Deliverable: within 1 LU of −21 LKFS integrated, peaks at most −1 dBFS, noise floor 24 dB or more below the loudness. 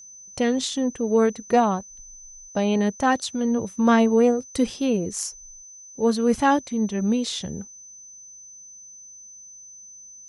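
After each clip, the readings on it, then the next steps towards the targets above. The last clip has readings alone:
interfering tone 6,100 Hz; level of the tone −42 dBFS; integrated loudness −22.5 LKFS; sample peak −5.0 dBFS; target loudness −21.0 LKFS
→ notch filter 6,100 Hz, Q 30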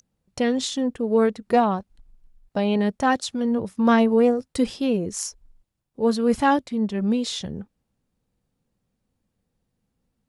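interfering tone none found; integrated loudness −22.5 LKFS; sample peak −5.0 dBFS; target loudness −21.0 LKFS
→ level +1.5 dB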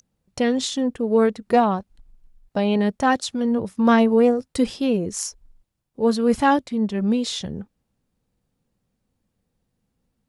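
integrated loudness −21.0 LKFS; sample peak −3.5 dBFS; background noise floor −76 dBFS

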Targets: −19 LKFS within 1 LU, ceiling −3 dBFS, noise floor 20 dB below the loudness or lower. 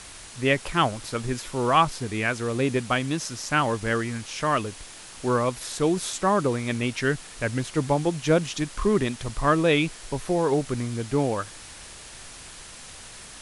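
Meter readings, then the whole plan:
background noise floor −44 dBFS; target noise floor −46 dBFS; integrated loudness −25.5 LKFS; sample peak −7.0 dBFS; target loudness −19.0 LKFS
→ broadband denoise 6 dB, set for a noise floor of −44 dBFS
level +6.5 dB
brickwall limiter −3 dBFS

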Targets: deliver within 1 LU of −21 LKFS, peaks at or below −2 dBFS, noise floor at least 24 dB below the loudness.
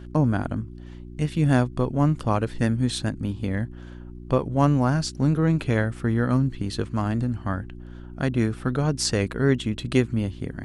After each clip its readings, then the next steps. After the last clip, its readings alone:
mains hum 60 Hz; hum harmonics up to 360 Hz; level of the hum −39 dBFS; integrated loudness −24.5 LKFS; sample peak −5.0 dBFS; target loudness −21.0 LKFS
→ hum removal 60 Hz, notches 6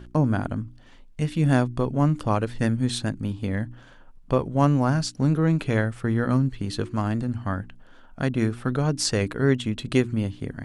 mains hum none found; integrated loudness −24.5 LKFS; sample peak −6.0 dBFS; target loudness −21.0 LKFS
→ level +3.5 dB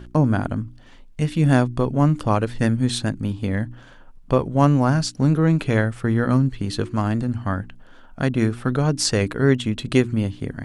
integrated loudness −21.0 LKFS; sample peak −2.5 dBFS; background noise floor −46 dBFS

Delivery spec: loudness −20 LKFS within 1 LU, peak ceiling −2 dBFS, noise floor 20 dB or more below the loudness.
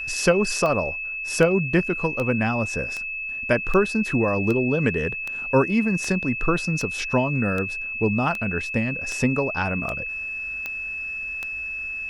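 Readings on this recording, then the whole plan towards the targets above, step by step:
number of clicks 15; interfering tone 2,600 Hz; level of the tone −28 dBFS; integrated loudness −23.5 LKFS; sample peak −4.5 dBFS; target loudness −20.0 LKFS
→ click removal
notch filter 2,600 Hz, Q 30
level +3.5 dB
brickwall limiter −2 dBFS

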